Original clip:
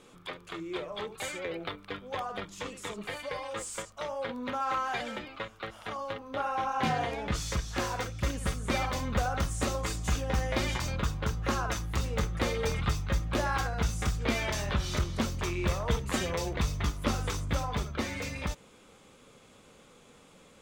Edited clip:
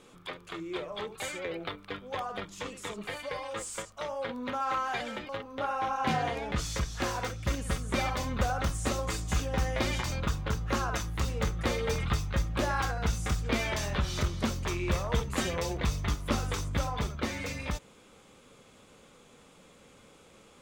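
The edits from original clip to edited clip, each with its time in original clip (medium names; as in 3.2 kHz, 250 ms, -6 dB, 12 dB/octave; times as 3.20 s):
5.29–6.05 s: delete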